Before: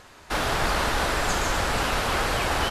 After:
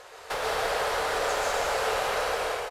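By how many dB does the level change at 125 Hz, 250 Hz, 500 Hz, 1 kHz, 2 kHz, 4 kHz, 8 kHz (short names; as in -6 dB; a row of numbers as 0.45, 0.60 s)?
-17.0, -14.0, +1.0, -2.5, -4.0, -5.0, -4.5 dB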